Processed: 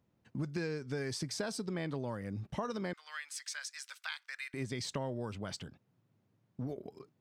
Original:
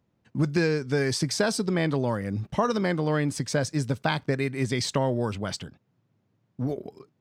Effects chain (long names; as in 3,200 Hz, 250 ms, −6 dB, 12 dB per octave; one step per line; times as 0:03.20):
0:02.93–0:04.54: high-pass filter 1,400 Hz 24 dB per octave
downward compressor 2 to 1, threshold −38 dBFS, peak gain reduction 10.5 dB
level −3.5 dB